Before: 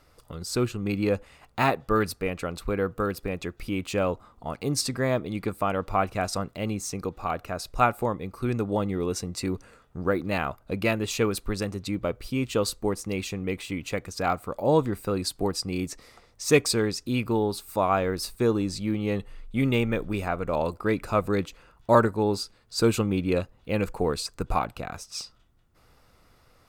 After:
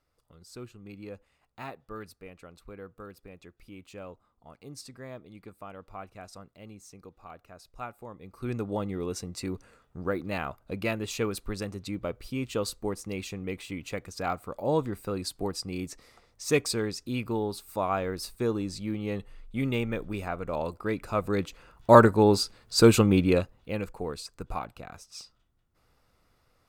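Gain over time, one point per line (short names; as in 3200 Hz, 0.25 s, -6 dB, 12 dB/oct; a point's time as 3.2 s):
8.05 s -17.5 dB
8.51 s -5 dB
21.08 s -5 dB
22.03 s +4.5 dB
23.19 s +4.5 dB
23.91 s -8.5 dB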